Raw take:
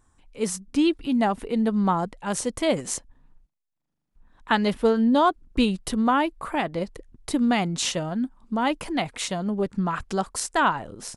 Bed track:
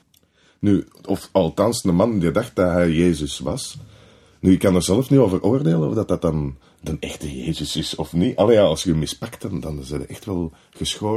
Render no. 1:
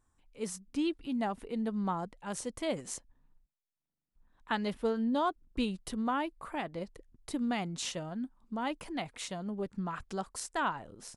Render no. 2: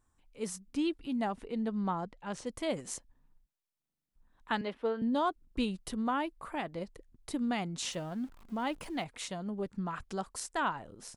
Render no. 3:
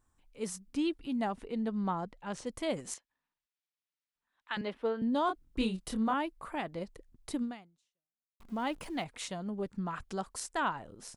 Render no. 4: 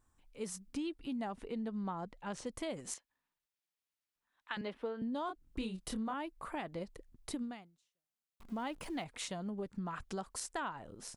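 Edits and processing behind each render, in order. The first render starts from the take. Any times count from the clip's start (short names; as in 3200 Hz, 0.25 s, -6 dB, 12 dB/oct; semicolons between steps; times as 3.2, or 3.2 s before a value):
gain -11 dB
1.3–2.45 LPF 8700 Hz -> 4800 Hz; 4.61–5.02 three-band isolator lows -16 dB, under 250 Hz, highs -19 dB, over 4000 Hz; 7.92–9.04 zero-crossing step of -51.5 dBFS
2.94–4.57 band-pass 2600 Hz, Q 0.82; 5.26–6.14 doubler 27 ms -5 dB; 7.42–8.4 fade out exponential
compressor 4:1, threshold -37 dBFS, peak gain reduction 9.5 dB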